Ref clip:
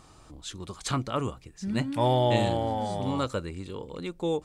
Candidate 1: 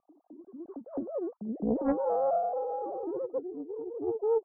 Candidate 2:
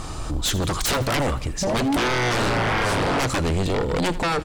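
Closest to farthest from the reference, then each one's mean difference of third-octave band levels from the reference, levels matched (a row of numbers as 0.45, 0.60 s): 2, 1; 11.5, 17.0 dB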